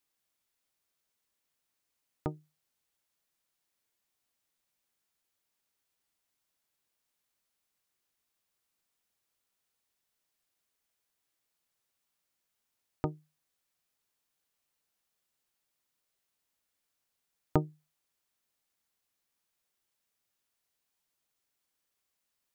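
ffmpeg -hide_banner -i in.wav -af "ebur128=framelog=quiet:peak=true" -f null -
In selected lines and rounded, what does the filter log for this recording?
Integrated loudness:
  I:         -37.2 LUFS
  Threshold: -48.1 LUFS
Loudness range:
  LRA:         8.1 LU
  Threshold: -65.5 LUFS
  LRA low:   -50.5 LUFS
  LRA high:  -42.4 LUFS
True peak:
  Peak:       -9.2 dBFS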